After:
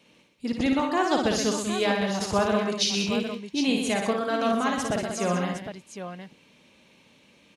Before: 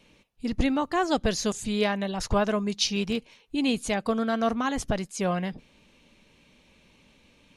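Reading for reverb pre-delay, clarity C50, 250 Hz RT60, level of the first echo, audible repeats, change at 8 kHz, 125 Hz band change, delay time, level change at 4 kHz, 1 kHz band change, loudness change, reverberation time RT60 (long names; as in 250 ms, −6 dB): no reverb audible, no reverb audible, no reverb audible, −4.5 dB, 5, +2.5 dB, 0.0 dB, 56 ms, +2.5 dB, +2.5 dB, +1.5 dB, no reverb audible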